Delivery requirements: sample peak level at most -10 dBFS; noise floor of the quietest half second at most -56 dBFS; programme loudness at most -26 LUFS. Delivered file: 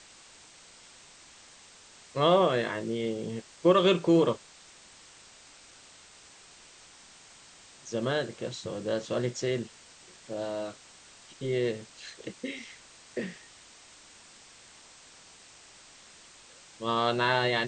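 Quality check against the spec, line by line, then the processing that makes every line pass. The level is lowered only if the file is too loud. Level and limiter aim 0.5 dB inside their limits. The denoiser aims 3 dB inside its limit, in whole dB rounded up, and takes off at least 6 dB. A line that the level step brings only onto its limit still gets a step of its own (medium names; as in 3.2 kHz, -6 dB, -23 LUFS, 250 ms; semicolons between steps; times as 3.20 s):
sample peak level -10.5 dBFS: pass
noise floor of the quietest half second -54 dBFS: fail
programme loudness -29.0 LUFS: pass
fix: noise reduction 6 dB, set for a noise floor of -54 dBFS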